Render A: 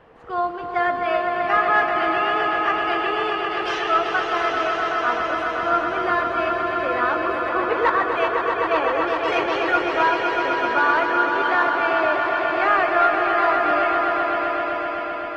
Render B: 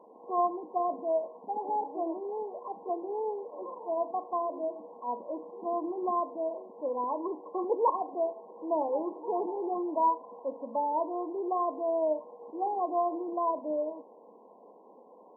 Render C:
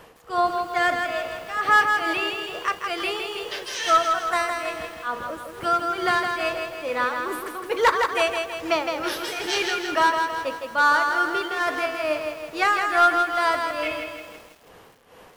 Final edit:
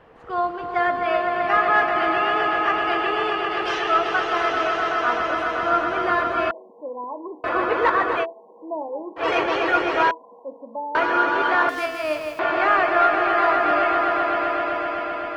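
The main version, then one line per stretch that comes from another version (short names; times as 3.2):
A
6.51–7.44 from B
8.23–9.19 from B, crossfade 0.06 s
10.11–10.95 from B
11.69–12.39 from C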